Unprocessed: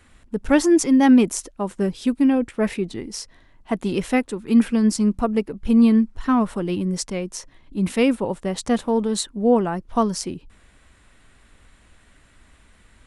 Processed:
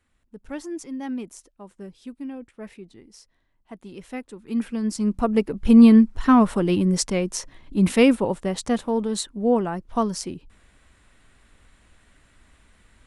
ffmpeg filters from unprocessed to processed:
ffmpeg -i in.wav -af "volume=3.5dB,afade=type=in:start_time=3.96:duration=0.96:silence=0.316228,afade=type=in:start_time=4.92:duration=0.69:silence=0.298538,afade=type=out:start_time=7.83:duration=0.95:silence=0.473151" out.wav

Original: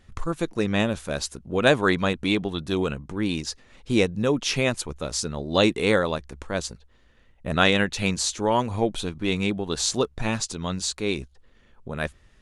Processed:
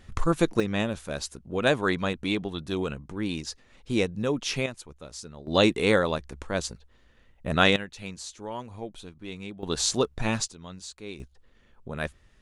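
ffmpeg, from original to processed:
ffmpeg -i in.wav -af "asetnsamples=nb_out_samples=441:pad=0,asendcmd='0.6 volume volume -4.5dB;4.66 volume volume -13dB;5.47 volume volume -1dB;7.76 volume volume -14dB;9.63 volume volume -1dB;10.48 volume volume -13.5dB;11.2 volume volume -3dB',volume=4dB" out.wav

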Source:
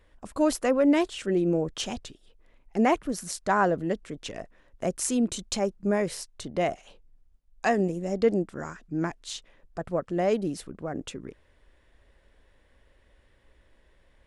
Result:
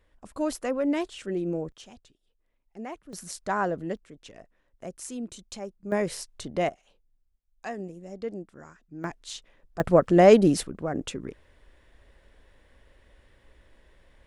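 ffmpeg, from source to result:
ffmpeg -i in.wav -af "asetnsamples=nb_out_samples=441:pad=0,asendcmd='1.72 volume volume -16dB;3.13 volume volume -4dB;3.97 volume volume -10.5dB;5.92 volume volume 0dB;6.69 volume volume -11.5dB;9.04 volume volume -2dB;9.8 volume volume 10dB;10.63 volume volume 3.5dB',volume=-5dB" out.wav

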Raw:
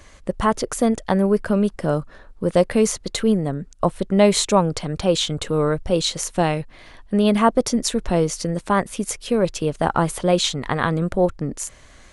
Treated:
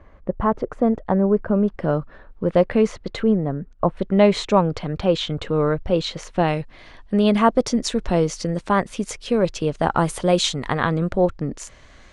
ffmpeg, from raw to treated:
ffmpeg -i in.wav -af "asetnsamples=nb_out_samples=441:pad=0,asendcmd='1.68 lowpass f 2700;3.24 lowpass f 1600;3.97 lowpass f 3200;6.48 lowpass f 6000;9.98 lowpass f 10000;10.73 lowpass f 5200',lowpass=1200" out.wav

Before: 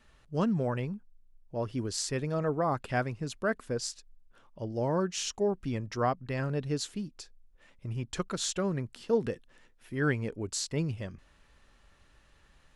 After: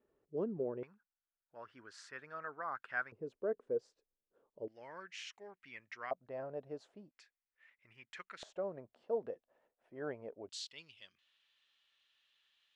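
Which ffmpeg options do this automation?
ffmpeg -i in.wav -af "asetnsamples=nb_out_samples=441:pad=0,asendcmd='0.83 bandpass f 1500;3.12 bandpass f 450;4.68 bandpass f 2100;6.11 bandpass f 650;7.11 bandpass f 2000;8.43 bandpass f 640;10.49 bandpass f 3300',bandpass=frequency=400:width_type=q:width=3.7:csg=0" out.wav

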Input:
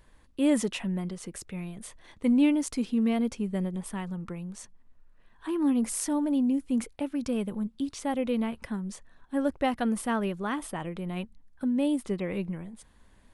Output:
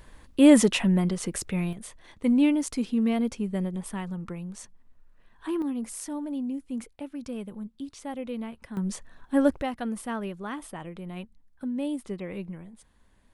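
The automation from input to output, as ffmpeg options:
ffmpeg -i in.wav -af "asetnsamples=nb_out_samples=441:pad=0,asendcmd='1.73 volume volume 1dB;5.62 volume volume -6dB;8.77 volume volume 6dB;9.62 volume volume -4dB',volume=8.5dB" out.wav

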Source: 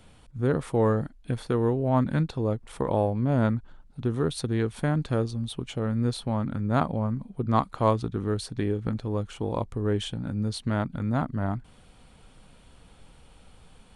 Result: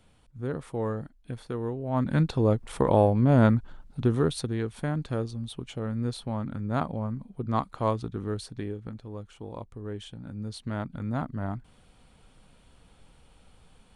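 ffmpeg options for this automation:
ffmpeg -i in.wav -af "volume=10.5dB,afade=type=in:start_time=1.88:duration=0.46:silence=0.266073,afade=type=out:start_time=4.02:duration=0.54:silence=0.398107,afade=type=out:start_time=8.34:duration=0.57:silence=0.473151,afade=type=in:start_time=10.05:duration=1.04:silence=0.473151" out.wav

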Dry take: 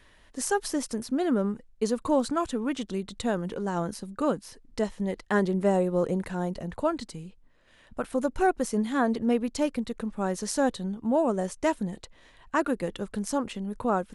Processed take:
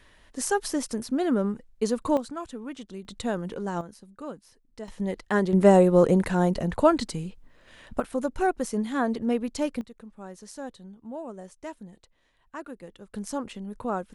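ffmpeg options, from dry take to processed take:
ffmpeg -i in.wav -af "asetnsamples=nb_out_samples=441:pad=0,asendcmd='2.17 volume volume -8dB;3.05 volume volume -1dB;3.81 volume volume -11.5dB;4.88 volume volume 0.5dB;5.53 volume volume 7.5dB;8 volume volume -1dB;9.81 volume volume -13dB;13.14 volume volume -3.5dB',volume=1dB" out.wav

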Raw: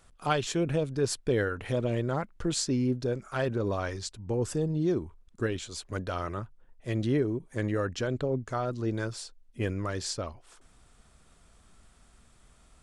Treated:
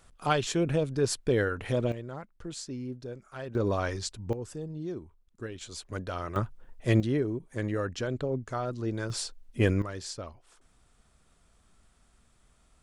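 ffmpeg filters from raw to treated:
ffmpeg -i in.wav -af "asetnsamples=nb_out_samples=441:pad=0,asendcmd='1.92 volume volume -10dB;3.55 volume volume 2dB;4.33 volume volume -9dB;5.61 volume volume -2dB;6.36 volume volume 7.5dB;7 volume volume -1.5dB;9.1 volume volume 6.5dB;9.82 volume volume -5dB',volume=1dB" out.wav

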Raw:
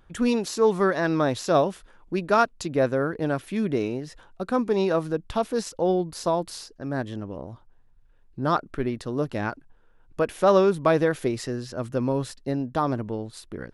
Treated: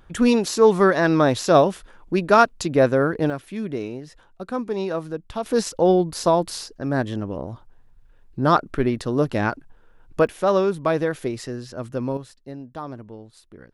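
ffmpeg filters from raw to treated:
ffmpeg -i in.wav -af "asetnsamples=nb_out_samples=441:pad=0,asendcmd='3.3 volume volume -3dB;5.46 volume volume 6dB;10.27 volume volume -1dB;12.17 volume volume -9dB',volume=5.5dB" out.wav

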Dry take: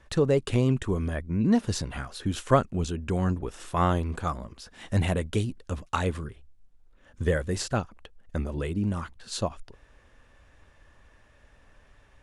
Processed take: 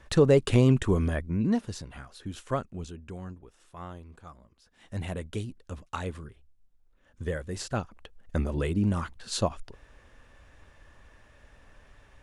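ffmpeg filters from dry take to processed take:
ffmpeg -i in.wav -af "volume=23dB,afade=type=out:start_time=0.99:duration=0.73:silence=0.251189,afade=type=out:start_time=2.74:duration=0.7:silence=0.354813,afade=type=in:start_time=4.6:duration=0.63:silence=0.281838,afade=type=in:start_time=7.49:duration=0.88:silence=0.354813" out.wav

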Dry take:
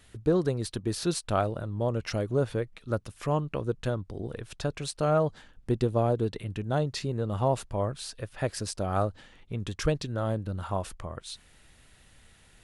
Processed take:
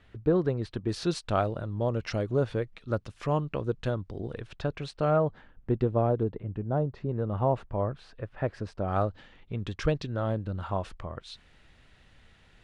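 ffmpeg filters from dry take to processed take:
ffmpeg -i in.wav -af "asetnsamples=nb_out_samples=441:pad=0,asendcmd='0.89 lowpass f 5200;4.47 lowpass f 3200;5.16 lowpass f 2000;6.23 lowpass f 1000;7.09 lowpass f 1800;8.88 lowpass f 4000',lowpass=2600" out.wav

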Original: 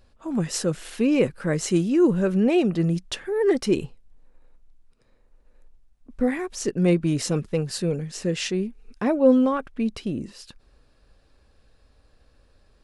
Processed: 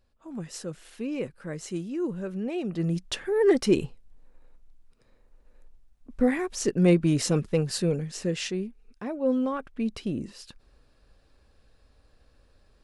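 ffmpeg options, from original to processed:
ffmpeg -i in.wav -af "volume=9.5dB,afade=type=in:start_time=2.59:duration=0.63:silence=0.266073,afade=type=out:start_time=7.76:duration=1.33:silence=0.266073,afade=type=in:start_time=9.09:duration=1.02:silence=0.334965" out.wav

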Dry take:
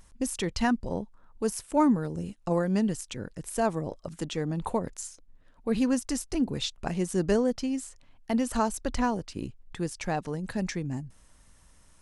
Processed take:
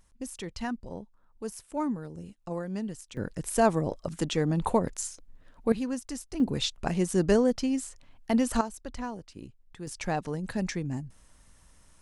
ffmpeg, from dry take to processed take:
ffmpeg -i in.wav -af "asetnsamples=nb_out_samples=441:pad=0,asendcmd='3.17 volume volume 4dB;5.72 volume volume -6.5dB;6.4 volume volume 2dB;8.61 volume volume -9dB;9.87 volume volume 0dB',volume=-8dB" out.wav

